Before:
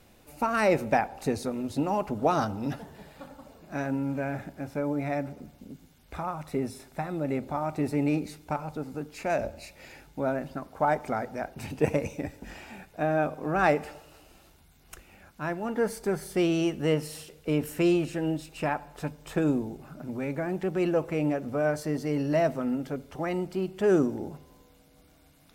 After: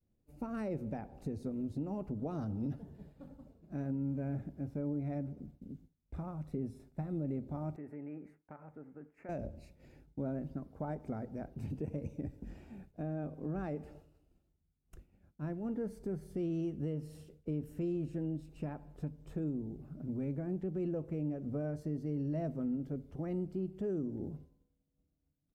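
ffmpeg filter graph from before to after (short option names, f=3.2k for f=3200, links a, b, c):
-filter_complex "[0:a]asettb=1/sr,asplit=3[a][b][c];[a]atrim=end=7.764[d];[b]atrim=start=7.76:end=9.29,asetpts=PTS-STARTPTS,afade=t=in:d=0.004:c=qsin,afade=t=out:st=1.526:d=0.004:c=qsin,highshelf=f=2.7k:t=q:w=3:g=-13.5,acompressor=threshold=-31dB:ratio=2:attack=3.2:release=140:knee=1:detection=peak,highpass=f=780:p=1[e];[c]atrim=start=9.286[f];[d][e]acrossfade=d=0.004:c1=hsin:c2=qsin[g];[g][f]acrossfade=d=0.004:c1=qsin:c2=hsin,agate=range=-33dB:threshold=-46dB:ratio=3:detection=peak,firequalizer=gain_entry='entry(130,0);entry(840,-18);entry(2200,-21)':delay=0.05:min_phase=1,alimiter=level_in=5dB:limit=-24dB:level=0:latency=1:release=226,volume=-5dB"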